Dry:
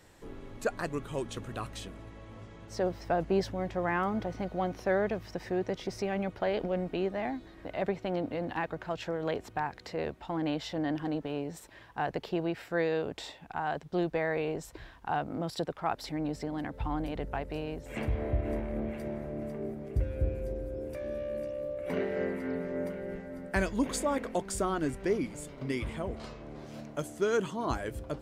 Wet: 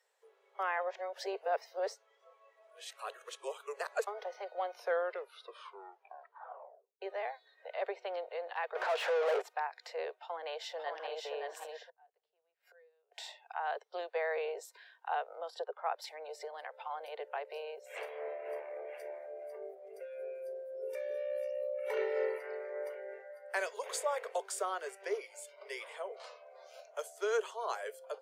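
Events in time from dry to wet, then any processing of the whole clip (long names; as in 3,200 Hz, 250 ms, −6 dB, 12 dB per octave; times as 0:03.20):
0:00.59–0:04.07: reverse
0:04.72: tape stop 2.30 s
0:08.75–0:09.42: mid-hump overdrive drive 34 dB, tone 1,200 Hz, clips at −19.5 dBFS
0:10.11–0:11.25: delay throw 570 ms, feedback 30%, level −3 dB
0:11.88–0:13.12: gate with flip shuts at −36 dBFS, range −27 dB
0:15.48–0:16.02: low-pass filter 2,200 Hz 6 dB per octave
0:20.82–0:22.38: comb filter 2.2 ms, depth 92%
whole clip: Butterworth high-pass 410 Hz 96 dB per octave; noise reduction from a noise print of the clip's start 14 dB; level −3 dB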